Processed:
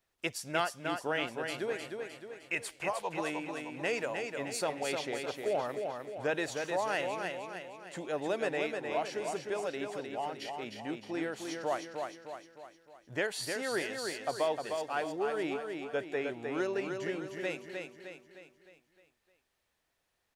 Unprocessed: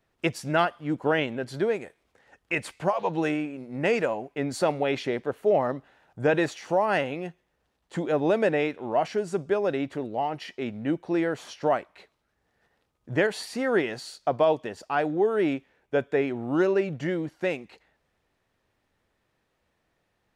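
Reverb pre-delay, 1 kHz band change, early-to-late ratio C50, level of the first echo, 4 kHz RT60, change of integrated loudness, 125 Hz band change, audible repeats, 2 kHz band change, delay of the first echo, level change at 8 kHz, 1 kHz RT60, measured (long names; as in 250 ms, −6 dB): no reverb audible, −7.5 dB, no reverb audible, −5.0 dB, no reverb audible, −8.5 dB, −13.5 dB, 5, −5.0 dB, 307 ms, +1.5 dB, no reverb audible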